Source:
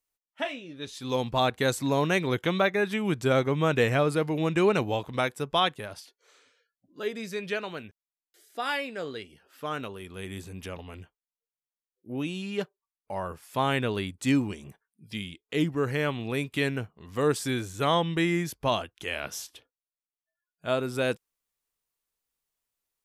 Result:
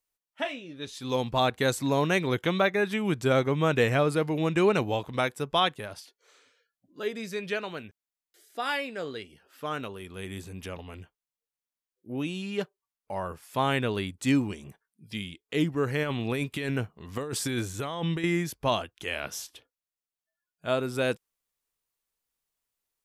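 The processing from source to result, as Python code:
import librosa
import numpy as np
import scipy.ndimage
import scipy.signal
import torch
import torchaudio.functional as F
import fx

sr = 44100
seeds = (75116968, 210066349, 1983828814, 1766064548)

y = fx.over_compress(x, sr, threshold_db=-30.0, ratio=-1.0, at=(16.03, 18.24))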